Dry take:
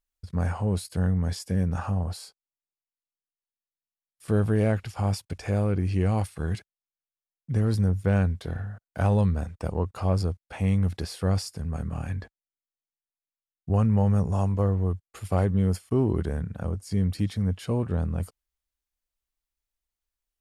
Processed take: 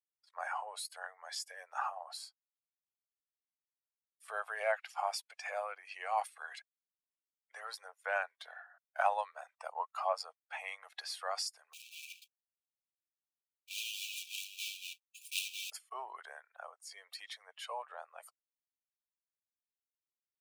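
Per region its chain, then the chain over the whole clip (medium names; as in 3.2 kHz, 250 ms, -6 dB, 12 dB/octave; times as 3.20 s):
11.73–15.72 s: block-companded coder 3-bit + brick-wall FIR high-pass 2.3 kHz
whole clip: expander on every frequency bin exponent 1.5; steep high-pass 660 Hz 48 dB/octave; treble shelf 5.2 kHz -7.5 dB; trim +4.5 dB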